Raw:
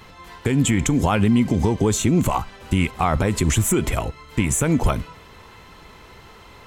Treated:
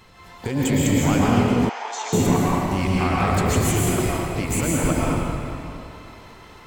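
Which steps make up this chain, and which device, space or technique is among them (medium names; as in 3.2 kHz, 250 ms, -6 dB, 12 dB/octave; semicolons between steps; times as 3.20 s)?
shimmer-style reverb (harmony voices +12 st -10 dB; reverberation RT60 2.9 s, pre-delay 106 ms, DRR -5.5 dB); 1.69–2.13 s: elliptic band-pass 740–6100 Hz, stop band 80 dB; trim -6.5 dB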